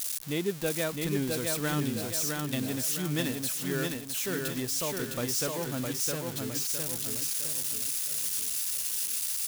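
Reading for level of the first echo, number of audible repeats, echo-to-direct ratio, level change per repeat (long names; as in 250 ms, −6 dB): −3.5 dB, 5, −2.5 dB, −7.5 dB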